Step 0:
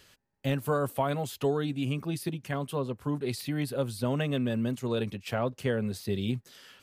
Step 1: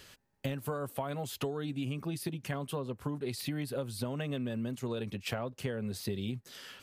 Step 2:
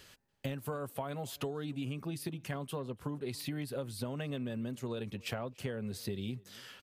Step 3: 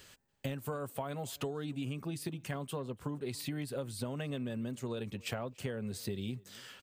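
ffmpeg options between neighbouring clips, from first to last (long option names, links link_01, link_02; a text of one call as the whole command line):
ffmpeg -i in.wav -af "acompressor=threshold=-36dB:ratio=10,volume=4dB" out.wav
ffmpeg -i in.wav -filter_complex "[0:a]asplit=2[link_01][link_02];[link_02]adelay=285.7,volume=-24dB,highshelf=frequency=4000:gain=-6.43[link_03];[link_01][link_03]amix=inputs=2:normalize=0,volume=-2.5dB" out.wav
ffmpeg -i in.wav -af "aexciter=amount=1:drive=6.5:freq=7100" out.wav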